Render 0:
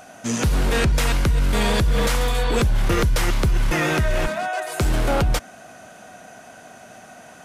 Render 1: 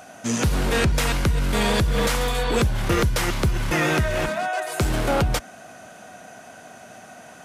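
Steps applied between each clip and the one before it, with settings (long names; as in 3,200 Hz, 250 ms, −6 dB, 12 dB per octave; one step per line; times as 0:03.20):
high-pass filter 53 Hz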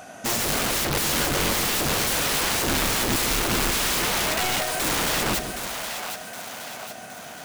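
wrap-around overflow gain 21.5 dB
echo with a time of its own for lows and highs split 520 Hz, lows 165 ms, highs 767 ms, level −7.5 dB
level +1.5 dB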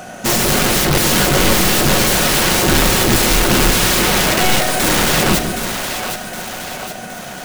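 in parallel at −8 dB: decimation without filtering 36×
on the sum: convolution reverb RT60 0.70 s, pre-delay 5 ms, DRR 8.5 dB
level +8 dB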